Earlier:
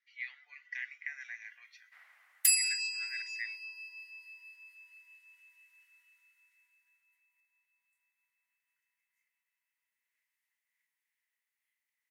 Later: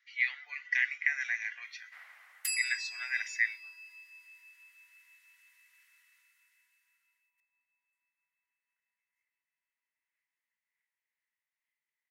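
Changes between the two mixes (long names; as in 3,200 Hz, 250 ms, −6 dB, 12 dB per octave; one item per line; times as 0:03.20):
speech +11.5 dB
first sound +7.0 dB
second sound: add spectral tilt −3 dB per octave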